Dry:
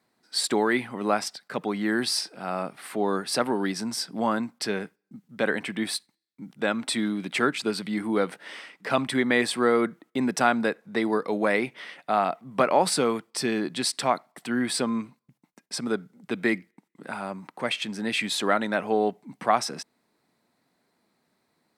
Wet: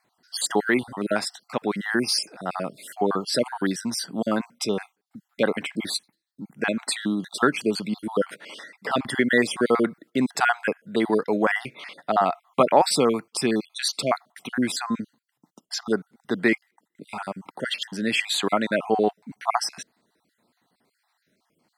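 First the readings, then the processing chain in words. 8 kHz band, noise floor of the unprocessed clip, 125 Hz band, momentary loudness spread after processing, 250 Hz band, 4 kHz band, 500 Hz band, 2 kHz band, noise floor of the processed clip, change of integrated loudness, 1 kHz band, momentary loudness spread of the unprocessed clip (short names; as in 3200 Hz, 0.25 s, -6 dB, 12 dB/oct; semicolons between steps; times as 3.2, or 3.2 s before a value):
+1.5 dB, -74 dBFS, +1.5 dB, 11 LU, +1.5 dB, +2.0 dB, +2.0 dB, +2.0 dB, -77 dBFS, +1.5 dB, +1.0 dB, 11 LU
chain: random spectral dropouts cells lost 42%; gain +4 dB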